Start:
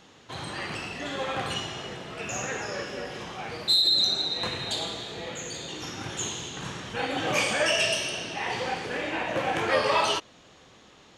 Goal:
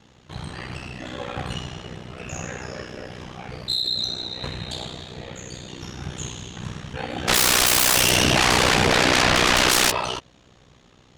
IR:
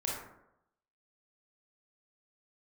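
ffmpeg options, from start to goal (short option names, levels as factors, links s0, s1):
-filter_complex "[0:a]equalizer=f=93:w=0.68:g=13,asplit=3[s0][s1][s2];[s0]afade=t=out:st=7.27:d=0.02[s3];[s1]aeval=exprs='0.251*sin(PI/2*8.91*val(0)/0.251)':c=same,afade=t=in:st=7.27:d=0.02,afade=t=out:st=9.9:d=0.02[s4];[s2]afade=t=in:st=9.9:d=0.02[s5];[s3][s4][s5]amix=inputs=3:normalize=0,aeval=exprs='val(0)*sin(2*PI*31*n/s)':c=same"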